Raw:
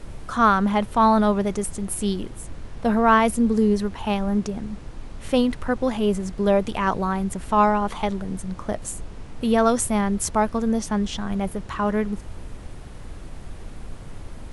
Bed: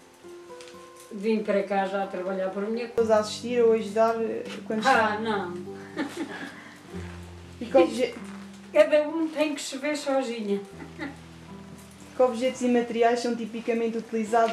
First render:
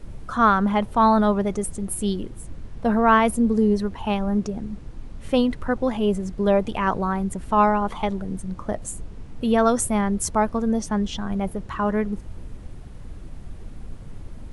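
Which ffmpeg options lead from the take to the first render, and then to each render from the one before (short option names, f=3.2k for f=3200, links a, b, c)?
-af "afftdn=nr=7:nf=-38"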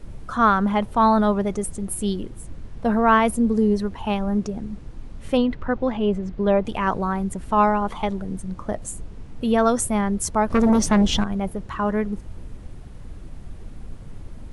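-filter_complex "[0:a]asettb=1/sr,asplit=3[a][b][c];[a]atrim=end=5.374[d];[b]atrim=start=5.37:end=6.65,asetpts=PTS-STARTPTS,afade=t=in:d=0.004:c=qsin,afade=t=out:st=1.276:d=0.004:c=qsin,lowpass=3.8k[e];[c]atrim=start=6.646[f];[d][e]acrossfade=d=0.004:c1=hsin:c2=qsin[g];[g][f]acrossfade=d=0.004:c1=qsin:c2=hsin,asettb=1/sr,asplit=3[h][i][j];[h]atrim=end=10.504[k];[i]atrim=start=10.5:end=11.24,asetpts=PTS-STARTPTS,afade=t=in:d=0.004:c=qsin,afade=t=out:st=0.736:d=0.004:c=qsin,aeval=exprs='0.237*sin(PI/2*2*val(0)/0.237)':c=same[l];[j]atrim=start=11.236[m];[k][l]acrossfade=d=0.004:c1=hsin:c2=qsin[n];[n][m]acrossfade=d=0.004:c1=qsin:c2=hsin"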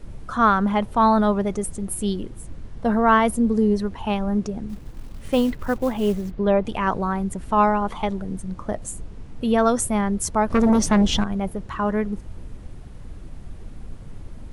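-filter_complex "[0:a]asettb=1/sr,asplit=3[a][b][c];[a]atrim=end=2.704[d];[b]atrim=start=2.7:end=3.35,asetpts=PTS-STARTPTS,afade=t=in:d=0.004:c=qsin,afade=t=out:st=0.646:d=0.004:c=qsin,bandreject=f=2.5k:w=12[e];[c]atrim=start=3.346[f];[d][e]acrossfade=d=0.004:c1=hsin:c2=qsin[g];[g][f]acrossfade=d=0.004:c1=qsin:c2=hsin,asettb=1/sr,asplit=3[h][i][j];[h]atrim=end=4.694[k];[i]atrim=start=4.69:end=6.31,asetpts=PTS-STARTPTS,afade=t=in:d=0.004:c=qsin,afade=t=out:st=1.616:d=0.004:c=qsin,acrusher=bits=6:mode=log:mix=0:aa=0.000001[l];[j]atrim=start=6.306[m];[k][l]acrossfade=d=0.004:c1=hsin:c2=qsin[n];[n][m]acrossfade=d=0.004:c1=qsin:c2=hsin"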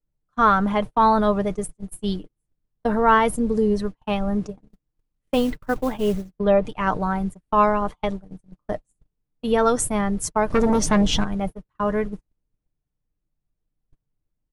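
-af "agate=range=-43dB:threshold=-25dB:ratio=16:detection=peak,aecho=1:1:6.6:0.39"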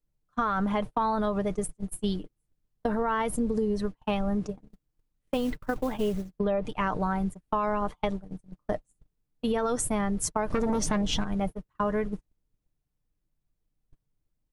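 -af "alimiter=limit=-13dB:level=0:latency=1:release=59,acompressor=threshold=-24dB:ratio=6"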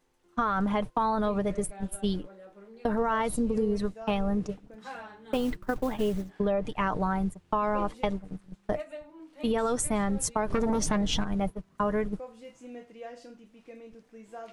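-filter_complex "[1:a]volume=-21dB[a];[0:a][a]amix=inputs=2:normalize=0"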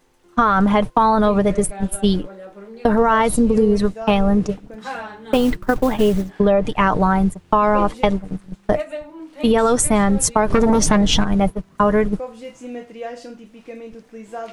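-af "volume=12dB"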